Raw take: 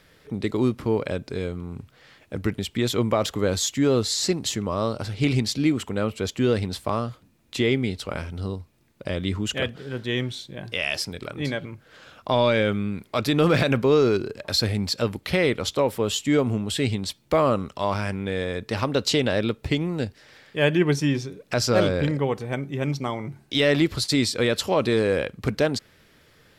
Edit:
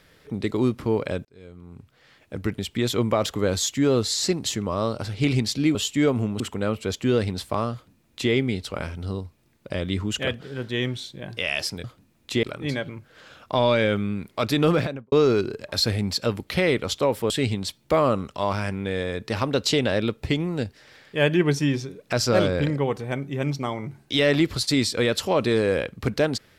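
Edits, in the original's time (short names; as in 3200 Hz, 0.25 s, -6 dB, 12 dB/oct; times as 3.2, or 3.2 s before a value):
1.25–3.12 fade in equal-power
7.08–7.67 copy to 11.19
13.39–13.88 studio fade out
16.06–16.71 move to 5.75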